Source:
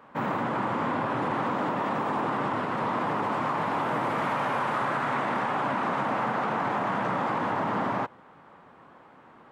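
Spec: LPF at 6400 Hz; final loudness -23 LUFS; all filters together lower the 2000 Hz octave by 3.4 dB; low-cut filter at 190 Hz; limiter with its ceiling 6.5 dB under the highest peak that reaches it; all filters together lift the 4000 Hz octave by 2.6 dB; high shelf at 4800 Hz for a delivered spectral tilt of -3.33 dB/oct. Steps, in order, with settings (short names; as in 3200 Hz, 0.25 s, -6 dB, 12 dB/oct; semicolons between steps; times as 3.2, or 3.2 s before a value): HPF 190 Hz; LPF 6400 Hz; bell 2000 Hz -6.5 dB; bell 4000 Hz +3 dB; high shelf 4800 Hz +9 dB; gain +10 dB; limiter -14.5 dBFS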